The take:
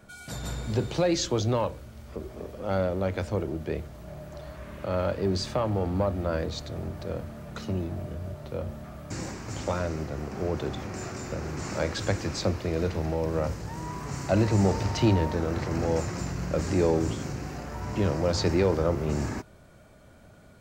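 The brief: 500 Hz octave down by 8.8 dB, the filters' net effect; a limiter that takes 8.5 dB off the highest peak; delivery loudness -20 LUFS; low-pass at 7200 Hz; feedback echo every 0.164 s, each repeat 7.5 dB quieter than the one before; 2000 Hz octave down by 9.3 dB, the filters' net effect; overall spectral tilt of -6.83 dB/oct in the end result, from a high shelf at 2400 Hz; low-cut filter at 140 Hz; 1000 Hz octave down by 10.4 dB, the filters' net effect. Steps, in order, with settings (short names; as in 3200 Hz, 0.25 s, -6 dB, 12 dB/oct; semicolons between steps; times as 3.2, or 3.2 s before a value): HPF 140 Hz; LPF 7200 Hz; bell 500 Hz -8.5 dB; bell 1000 Hz -8 dB; bell 2000 Hz -4.5 dB; high shelf 2400 Hz -8.5 dB; limiter -25 dBFS; feedback echo 0.164 s, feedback 42%, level -7.5 dB; gain +16.5 dB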